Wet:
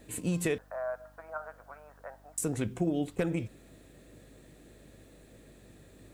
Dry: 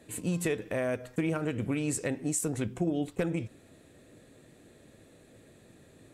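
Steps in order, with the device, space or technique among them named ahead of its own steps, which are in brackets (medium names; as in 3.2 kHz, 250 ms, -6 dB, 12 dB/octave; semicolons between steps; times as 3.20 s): 0.58–2.38 s: Chebyshev band-pass 640–1500 Hz, order 3; video cassette with head-switching buzz (mains buzz 50 Hz, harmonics 6, -60 dBFS -6 dB/octave; white noise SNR 37 dB)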